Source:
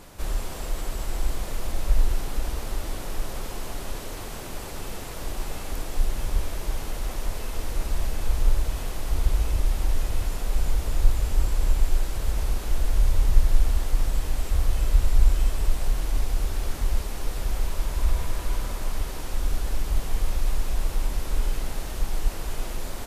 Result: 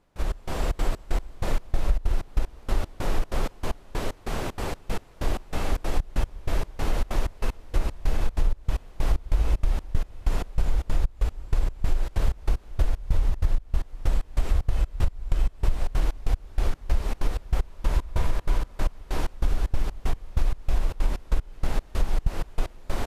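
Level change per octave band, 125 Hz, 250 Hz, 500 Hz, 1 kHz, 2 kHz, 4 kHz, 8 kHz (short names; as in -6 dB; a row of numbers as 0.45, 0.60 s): 0.0, +2.0, +2.0, +1.5, 0.0, -3.0, -7.5 dB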